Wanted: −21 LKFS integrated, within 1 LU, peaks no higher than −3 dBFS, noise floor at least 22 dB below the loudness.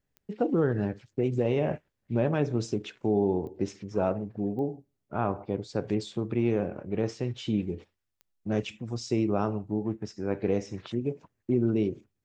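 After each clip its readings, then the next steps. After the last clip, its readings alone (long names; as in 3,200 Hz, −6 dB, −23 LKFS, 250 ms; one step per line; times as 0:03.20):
number of clicks 4; integrated loudness −30.0 LKFS; sample peak −13.5 dBFS; target loudness −21.0 LKFS
→ click removal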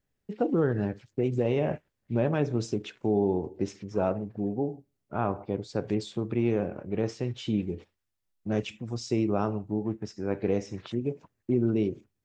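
number of clicks 0; integrated loudness −30.0 LKFS; sample peak −13.5 dBFS; target loudness −21.0 LKFS
→ level +9 dB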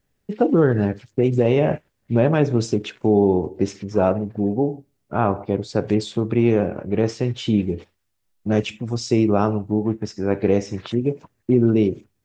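integrated loudness −21.0 LKFS; sample peak −4.5 dBFS; background noise floor −72 dBFS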